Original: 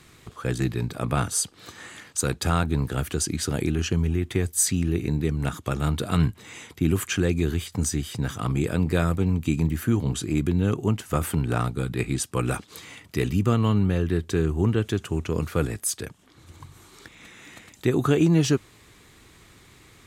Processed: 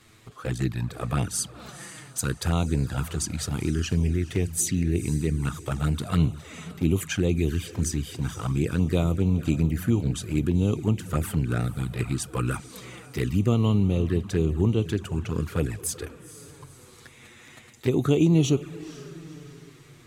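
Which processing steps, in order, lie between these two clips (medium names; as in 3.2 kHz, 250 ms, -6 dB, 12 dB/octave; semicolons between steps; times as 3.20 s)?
echo that smears into a reverb 484 ms, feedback 44%, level -15 dB; touch-sensitive flanger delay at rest 10.1 ms, full sweep at -18 dBFS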